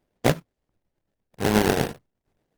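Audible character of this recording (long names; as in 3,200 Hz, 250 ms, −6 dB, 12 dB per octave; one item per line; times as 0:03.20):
aliases and images of a low sample rate 1,200 Hz, jitter 20%
tremolo triangle 8.4 Hz, depth 60%
Opus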